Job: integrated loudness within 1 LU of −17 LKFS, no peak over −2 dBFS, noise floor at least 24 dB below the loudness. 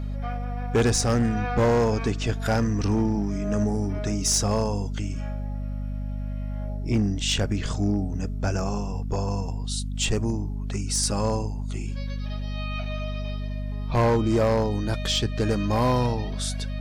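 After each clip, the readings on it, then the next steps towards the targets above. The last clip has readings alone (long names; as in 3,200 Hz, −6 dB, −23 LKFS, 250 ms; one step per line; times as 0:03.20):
share of clipped samples 1.1%; peaks flattened at −16.0 dBFS; mains hum 50 Hz; hum harmonics up to 250 Hz; level of the hum −27 dBFS; integrated loudness −26.0 LKFS; sample peak −16.0 dBFS; target loudness −17.0 LKFS
→ clipped peaks rebuilt −16 dBFS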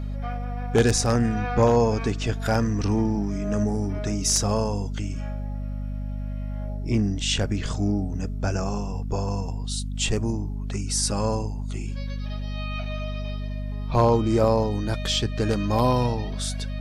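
share of clipped samples 0.0%; mains hum 50 Hz; hum harmonics up to 250 Hz; level of the hum −27 dBFS
→ hum removal 50 Hz, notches 5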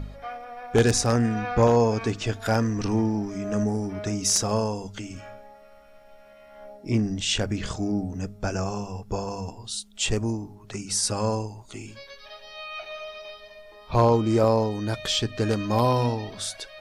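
mains hum none found; integrated loudness −25.0 LKFS; sample peak −6.5 dBFS; target loudness −17.0 LKFS
→ level +8 dB
brickwall limiter −2 dBFS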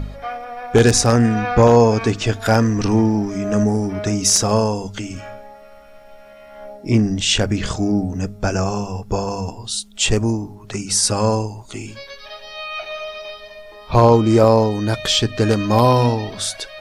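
integrated loudness −17.5 LKFS; sample peak −2.0 dBFS; background noise floor −42 dBFS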